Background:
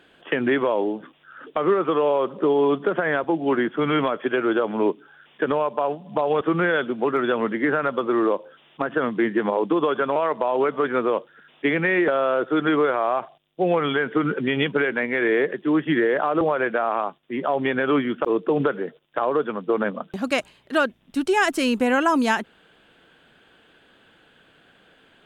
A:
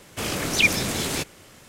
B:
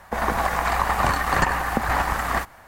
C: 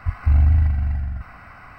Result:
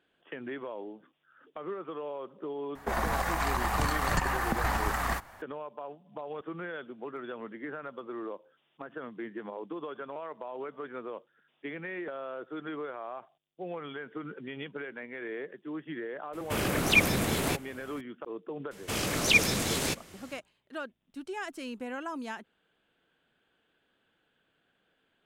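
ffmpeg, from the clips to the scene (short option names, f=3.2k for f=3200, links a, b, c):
-filter_complex "[1:a]asplit=2[a][b];[0:a]volume=-18dB[c];[2:a]acrossover=split=230|3000[d][e][f];[e]acompressor=threshold=-23dB:ratio=6:attack=3.2:release=140:knee=2.83:detection=peak[g];[d][g][f]amix=inputs=3:normalize=0[h];[a]equalizer=f=5.7k:t=o:w=1.7:g=-9[i];[h]atrim=end=2.67,asetpts=PTS-STARTPTS,volume=-4dB,afade=t=in:d=0.004:c=hsin,afade=t=out:st=2.666:d=0.004:c=hsin,adelay=2750[j];[i]atrim=end=1.68,asetpts=PTS-STARTPTS,volume=-0.5dB,afade=t=in:d=0.004:c=hsin,afade=t=out:st=1.676:d=0.004:c=hsin,adelay=16330[k];[b]atrim=end=1.68,asetpts=PTS-STARTPTS,volume=-3.5dB,afade=t=in:d=0.004:c=hsin,afade=t=out:st=1.676:d=0.004:c=hsin,adelay=18710[l];[c][j][k][l]amix=inputs=4:normalize=0"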